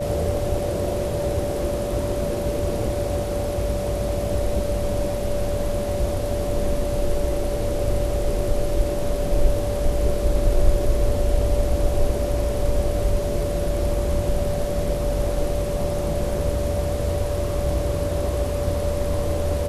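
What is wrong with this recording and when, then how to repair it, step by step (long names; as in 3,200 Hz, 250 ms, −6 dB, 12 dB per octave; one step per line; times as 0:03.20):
whistle 580 Hz −26 dBFS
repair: notch filter 580 Hz, Q 30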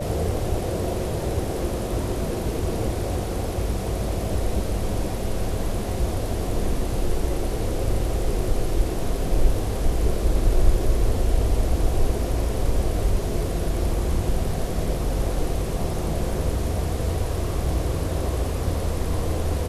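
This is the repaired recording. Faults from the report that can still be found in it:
none of them is left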